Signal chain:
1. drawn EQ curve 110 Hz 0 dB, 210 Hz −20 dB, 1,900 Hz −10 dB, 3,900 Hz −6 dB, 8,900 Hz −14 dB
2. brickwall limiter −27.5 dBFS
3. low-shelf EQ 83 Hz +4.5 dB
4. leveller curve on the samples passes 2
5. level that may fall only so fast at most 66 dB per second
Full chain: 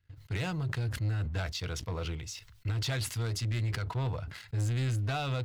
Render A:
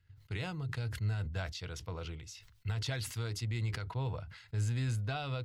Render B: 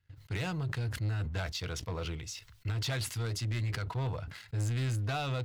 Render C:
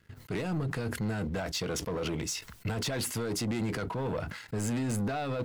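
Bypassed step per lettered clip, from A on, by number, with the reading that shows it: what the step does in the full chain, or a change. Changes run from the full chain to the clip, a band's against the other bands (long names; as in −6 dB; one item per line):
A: 4, change in integrated loudness −4.0 LU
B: 3, change in integrated loudness −1.5 LU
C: 1, 125 Hz band −8.5 dB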